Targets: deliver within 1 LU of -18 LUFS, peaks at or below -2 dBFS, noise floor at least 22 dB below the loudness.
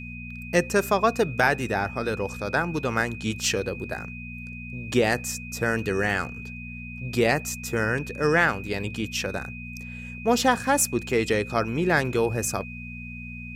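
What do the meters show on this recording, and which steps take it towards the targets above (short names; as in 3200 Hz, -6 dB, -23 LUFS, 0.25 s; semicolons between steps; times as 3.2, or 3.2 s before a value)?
hum 60 Hz; harmonics up to 240 Hz; hum level -36 dBFS; steady tone 2500 Hz; tone level -39 dBFS; loudness -25.0 LUFS; peak -6.5 dBFS; loudness target -18.0 LUFS
-> de-hum 60 Hz, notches 4; notch 2500 Hz, Q 30; gain +7 dB; limiter -2 dBFS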